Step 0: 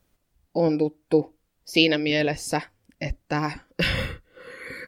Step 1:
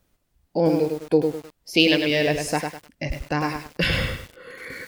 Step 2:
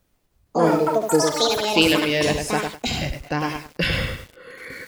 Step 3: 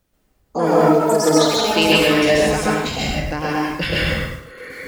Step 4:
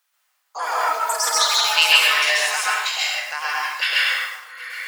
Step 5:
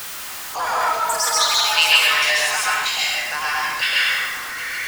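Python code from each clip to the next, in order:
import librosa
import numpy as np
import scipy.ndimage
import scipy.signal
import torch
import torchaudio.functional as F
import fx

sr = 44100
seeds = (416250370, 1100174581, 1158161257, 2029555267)

y1 = fx.echo_crushed(x, sr, ms=102, feedback_pct=35, bits=7, wet_db=-5.0)
y1 = F.gain(torch.from_numpy(y1), 1.0).numpy()
y2 = fx.echo_pitch(y1, sr, ms=156, semitones=6, count=3, db_per_echo=-3.0)
y2 = fx.end_taper(y2, sr, db_per_s=300.0)
y3 = fx.rev_plate(y2, sr, seeds[0], rt60_s=0.6, hf_ratio=0.5, predelay_ms=120, drr_db=-4.5)
y3 = F.gain(torch.from_numpy(y3), -1.5).numpy()
y4 = scipy.signal.sosfilt(scipy.signal.butter(4, 1000.0, 'highpass', fs=sr, output='sos'), y3)
y4 = y4 + 10.0 ** (-21.5 / 20.0) * np.pad(y4, (int(776 * sr / 1000.0), 0))[:len(y4)]
y4 = F.gain(torch.from_numpy(y4), 3.5).numpy()
y5 = y4 + 0.5 * 10.0 ** (-24.5 / 20.0) * np.sign(y4)
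y5 = F.gain(torch.from_numpy(y5), -1.0).numpy()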